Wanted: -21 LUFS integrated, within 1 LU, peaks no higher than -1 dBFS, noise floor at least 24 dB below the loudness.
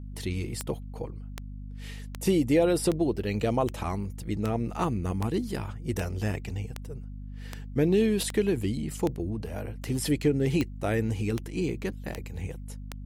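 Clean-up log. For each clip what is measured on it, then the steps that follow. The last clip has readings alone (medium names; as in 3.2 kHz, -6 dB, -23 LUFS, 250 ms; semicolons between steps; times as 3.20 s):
clicks found 17; hum 50 Hz; highest harmonic 250 Hz; hum level -36 dBFS; loudness -29.0 LUFS; peak level -12.0 dBFS; loudness target -21.0 LUFS
-> de-click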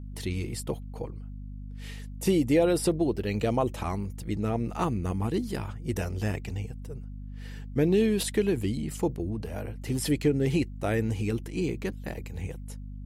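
clicks found 0; hum 50 Hz; highest harmonic 250 Hz; hum level -36 dBFS
-> de-hum 50 Hz, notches 5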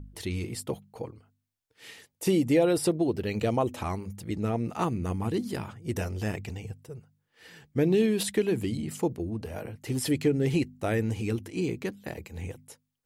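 hum not found; loudness -29.5 LUFS; peak level -12.5 dBFS; loudness target -21.0 LUFS
-> trim +8.5 dB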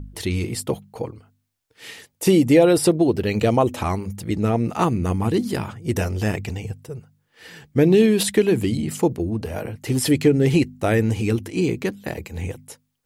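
loudness -21.0 LUFS; peak level -4.0 dBFS; noise floor -71 dBFS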